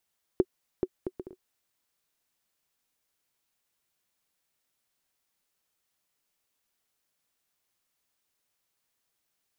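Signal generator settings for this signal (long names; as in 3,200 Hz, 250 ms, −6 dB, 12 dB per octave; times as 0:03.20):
bouncing ball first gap 0.43 s, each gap 0.55, 370 Hz, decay 50 ms −10.5 dBFS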